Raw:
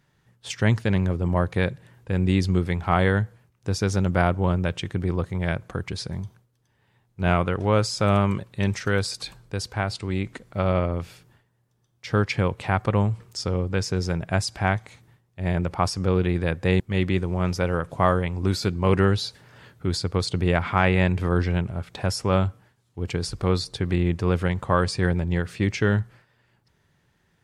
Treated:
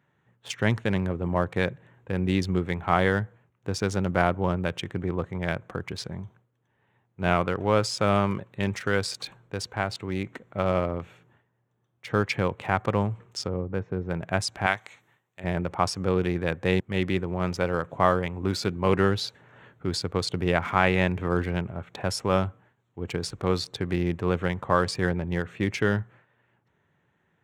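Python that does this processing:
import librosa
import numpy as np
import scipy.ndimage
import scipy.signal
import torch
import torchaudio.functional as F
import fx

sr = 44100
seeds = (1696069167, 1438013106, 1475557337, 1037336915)

y = fx.spacing_loss(x, sr, db_at_10k=44, at=(13.46, 14.1), fade=0.02)
y = fx.tilt_eq(y, sr, slope=3.5, at=(14.66, 15.44))
y = fx.wiener(y, sr, points=9)
y = scipy.signal.sosfilt(scipy.signal.butter(2, 79.0, 'highpass', fs=sr, output='sos'), y)
y = fx.low_shelf(y, sr, hz=180.0, db=-6.5)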